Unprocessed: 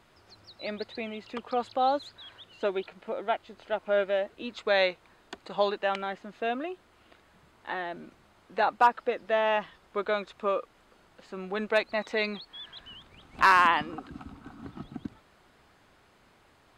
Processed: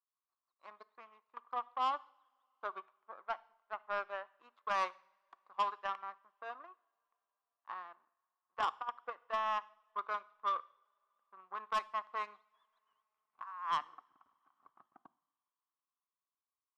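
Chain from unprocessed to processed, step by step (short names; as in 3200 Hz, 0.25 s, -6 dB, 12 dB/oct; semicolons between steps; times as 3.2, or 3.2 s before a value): power-law curve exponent 2; band-pass 1100 Hz, Q 8.1; negative-ratio compressor -39 dBFS, ratio -0.5; soft clip -37 dBFS, distortion -10 dB; two-slope reverb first 0.59 s, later 4.2 s, from -27 dB, DRR 18 dB; gain +10 dB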